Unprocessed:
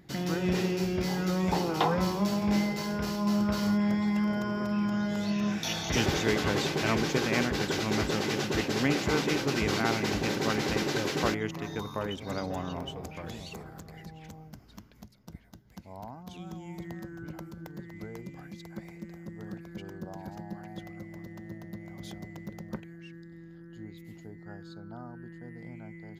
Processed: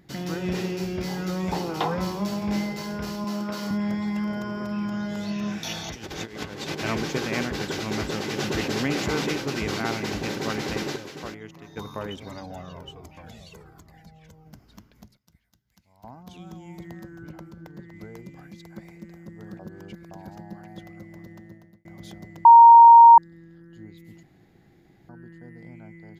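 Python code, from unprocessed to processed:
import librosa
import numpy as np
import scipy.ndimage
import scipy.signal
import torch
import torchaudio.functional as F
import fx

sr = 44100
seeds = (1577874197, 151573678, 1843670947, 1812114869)

y = fx.highpass(x, sr, hz=220.0, slope=12, at=(3.24, 3.71))
y = fx.over_compress(y, sr, threshold_db=-32.0, ratio=-0.5, at=(5.88, 6.78), fade=0.02)
y = fx.env_flatten(y, sr, amount_pct=50, at=(8.38, 9.32))
y = fx.comb_cascade(y, sr, direction='falling', hz=1.3, at=(12.28, 14.45), fade=0.02)
y = fx.tone_stack(y, sr, knobs='5-5-5', at=(15.17, 16.04))
y = fx.high_shelf(y, sr, hz=7100.0, db=-8.0, at=(17.31, 17.94))
y = fx.edit(y, sr, fx.clip_gain(start_s=10.96, length_s=0.81, db=-9.0),
    fx.reverse_span(start_s=19.59, length_s=0.52),
    fx.fade_out_span(start_s=21.32, length_s=0.53),
    fx.bleep(start_s=22.45, length_s=0.73, hz=931.0, db=-6.0),
    fx.room_tone_fill(start_s=24.23, length_s=0.86), tone=tone)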